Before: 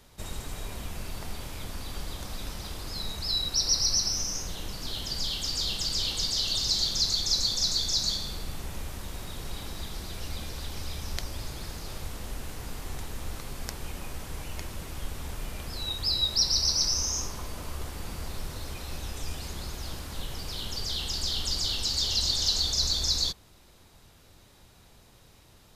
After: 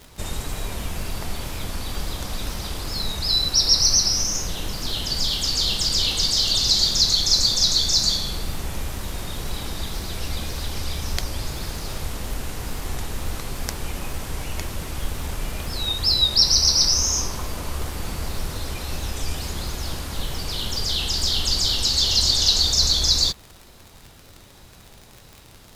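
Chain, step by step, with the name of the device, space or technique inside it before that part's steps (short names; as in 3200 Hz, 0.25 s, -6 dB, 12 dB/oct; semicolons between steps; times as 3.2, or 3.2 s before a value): vinyl LP (wow and flutter; crackle 56/s -39 dBFS; pink noise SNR 36 dB); gain +8 dB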